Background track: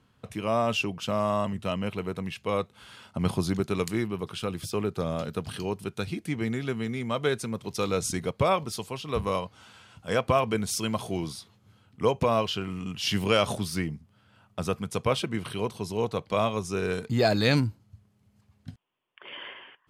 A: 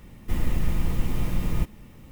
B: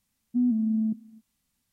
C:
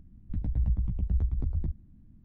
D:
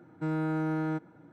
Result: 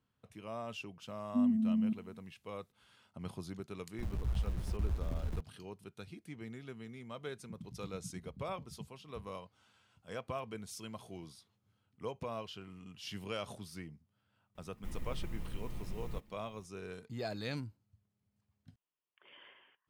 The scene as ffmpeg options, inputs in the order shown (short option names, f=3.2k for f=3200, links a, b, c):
-filter_complex "[3:a]asplit=2[a][b];[0:a]volume=-17dB[c];[a]aeval=exprs='val(0)*gte(abs(val(0)),0.0178)':c=same[d];[b]asuperpass=centerf=180:order=4:qfactor=1.9[e];[2:a]atrim=end=1.72,asetpts=PTS-STARTPTS,volume=-5.5dB,afade=t=in:d=0.004:c=hsin,afade=t=out:st=1.716:d=0.004:c=hsin,adelay=1000[f];[d]atrim=end=2.24,asetpts=PTS-STARTPTS,volume=-7.5dB,afade=t=in:d=0.004:c=hsin,afade=t=out:st=2.236:d=0.004:c=hsin,adelay=162729S[g];[e]atrim=end=2.24,asetpts=PTS-STARTPTS,volume=-8dB,afade=t=in:d=0.004:c=hsin,afade=t=out:st=2.236:d=0.004:c=hsin,adelay=7160[h];[1:a]atrim=end=2.11,asetpts=PTS-STARTPTS,volume=-17.5dB,afade=t=in:d=0.004:c=hsin,afade=t=out:st=2.106:d=0.004:c=hsin,adelay=14550[i];[c][f][g][h][i]amix=inputs=5:normalize=0"